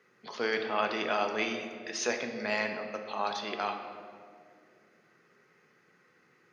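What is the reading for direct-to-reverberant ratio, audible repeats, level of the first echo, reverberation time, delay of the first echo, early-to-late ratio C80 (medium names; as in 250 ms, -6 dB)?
4.0 dB, no echo, no echo, 2.2 s, no echo, 7.5 dB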